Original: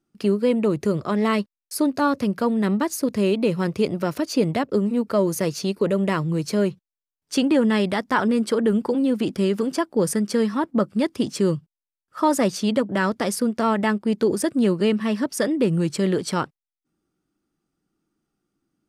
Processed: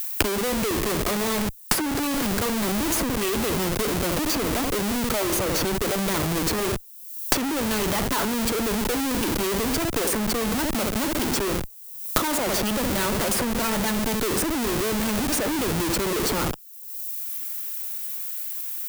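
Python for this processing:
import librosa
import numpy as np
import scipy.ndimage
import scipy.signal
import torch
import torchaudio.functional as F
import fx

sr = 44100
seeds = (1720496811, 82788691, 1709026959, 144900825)

y = scipy.signal.sosfilt(scipy.signal.butter(4, 230.0, 'highpass', fs=sr, output='sos'), x)
y = fx.echo_feedback(y, sr, ms=66, feedback_pct=40, wet_db=-13.0)
y = fx.schmitt(y, sr, flips_db=-34.5)
y = fx.dmg_noise_colour(y, sr, seeds[0], colour='violet', level_db=-56.0)
y = fx.transient(y, sr, attack_db=7, sustain_db=-3)
y = fx.high_shelf(y, sr, hz=7700.0, db=9.5)
y = fx.band_squash(y, sr, depth_pct=100)
y = F.gain(torch.from_numpy(y), -1.5).numpy()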